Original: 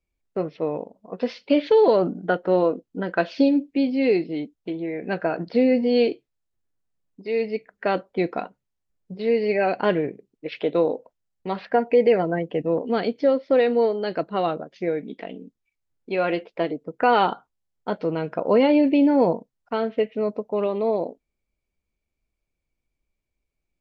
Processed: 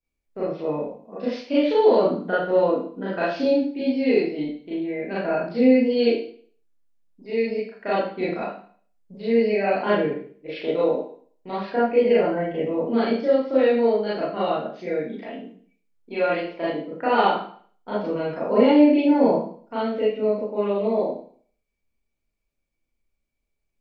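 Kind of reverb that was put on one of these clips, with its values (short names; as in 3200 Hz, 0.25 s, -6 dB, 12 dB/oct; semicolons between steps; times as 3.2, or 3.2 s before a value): Schroeder reverb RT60 0.49 s, combs from 27 ms, DRR -9.5 dB; gain -9.5 dB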